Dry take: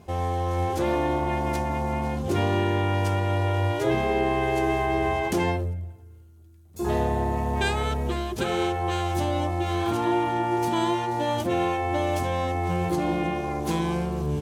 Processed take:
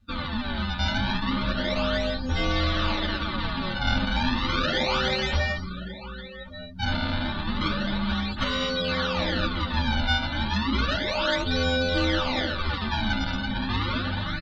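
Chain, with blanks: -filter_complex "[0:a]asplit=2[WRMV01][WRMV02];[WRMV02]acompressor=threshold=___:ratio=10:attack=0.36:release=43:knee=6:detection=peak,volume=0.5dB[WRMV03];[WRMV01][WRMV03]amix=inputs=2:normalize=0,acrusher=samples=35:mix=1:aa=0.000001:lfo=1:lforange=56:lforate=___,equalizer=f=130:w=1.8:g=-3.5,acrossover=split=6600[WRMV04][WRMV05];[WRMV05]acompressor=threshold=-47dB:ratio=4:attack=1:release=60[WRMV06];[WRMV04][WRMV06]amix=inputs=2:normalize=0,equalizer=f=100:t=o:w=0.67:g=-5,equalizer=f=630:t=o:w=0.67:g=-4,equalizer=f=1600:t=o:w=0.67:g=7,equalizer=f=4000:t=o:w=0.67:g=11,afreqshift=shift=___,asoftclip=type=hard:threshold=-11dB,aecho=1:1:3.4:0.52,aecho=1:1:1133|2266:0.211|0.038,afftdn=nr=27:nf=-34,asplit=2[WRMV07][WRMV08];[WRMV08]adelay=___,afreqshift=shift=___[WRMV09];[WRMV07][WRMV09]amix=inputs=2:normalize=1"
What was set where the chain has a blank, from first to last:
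-32dB, 0.32, -270, 9.7, -0.41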